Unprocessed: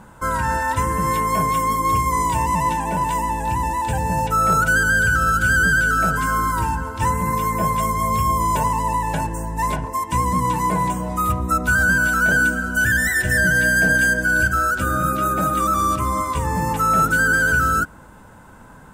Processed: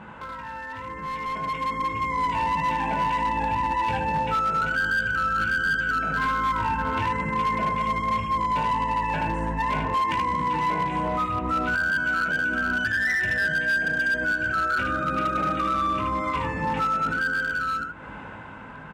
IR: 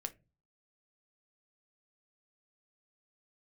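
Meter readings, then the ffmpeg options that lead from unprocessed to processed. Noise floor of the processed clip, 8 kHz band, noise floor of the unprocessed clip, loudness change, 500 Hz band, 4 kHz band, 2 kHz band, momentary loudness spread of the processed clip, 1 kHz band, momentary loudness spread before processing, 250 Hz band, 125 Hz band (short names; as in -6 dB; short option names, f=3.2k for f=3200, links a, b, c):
-40 dBFS, under -20 dB, -44 dBFS, -5.5 dB, -6.0 dB, -3.0 dB, -6.5 dB, 8 LU, -4.5 dB, 7 LU, -6.5 dB, -10.5 dB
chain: -filter_complex "[0:a]alimiter=limit=-19.5dB:level=0:latency=1:release=53,lowpass=f=2.6k:t=q:w=2.5,acompressor=threshold=-36dB:ratio=16,highpass=f=110:p=1,asplit=2[a][b];[b]aecho=0:1:19|77:0.631|0.708[c];[a][c]amix=inputs=2:normalize=0,asoftclip=type=hard:threshold=-31.5dB,dynaudnorm=f=180:g=17:m=12dB"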